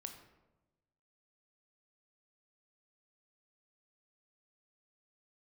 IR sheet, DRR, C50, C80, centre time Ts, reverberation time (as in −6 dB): 5.0 dB, 8.0 dB, 10.0 dB, 21 ms, 1.1 s